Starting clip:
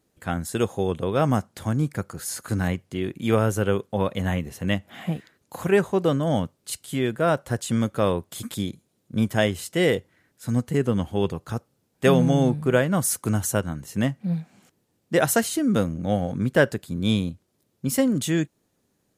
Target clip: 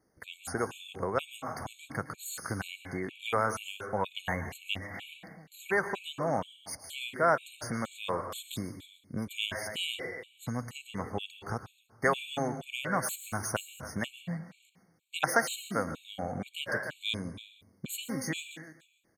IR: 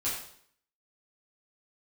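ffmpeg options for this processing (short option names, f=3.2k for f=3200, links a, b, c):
-filter_complex "[0:a]equalizer=f=1.3k:w=0.36:g=5,acrossover=split=690|3800[a][b][c];[a]acompressor=threshold=-29dB:ratio=6[d];[c]asoftclip=type=tanh:threshold=-25dB[e];[d][b][e]amix=inputs=3:normalize=0,aecho=1:1:290|580:0.133|0.0213,asplit=2[f][g];[1:a]atrim=start_sample=2205,adelay=109[h];[g][h]afir=irnorm=-1:irlink=0,volume=-15.5dB[i];[f][i]amix=inputs=2:normalize=0,afftfilt=real='re*gt(sin(2*PI*2.1*pts/sr)*(1-2*mod(floor(b*sr/1024/2200),2)),0)':imag='im*gt(sin(2*PI*2.1*pts/sr)*(1-2*mod(floor(b*sr/1024/2200),2)),0)':win_size=1024:overlap=0.75,volume=-4dB"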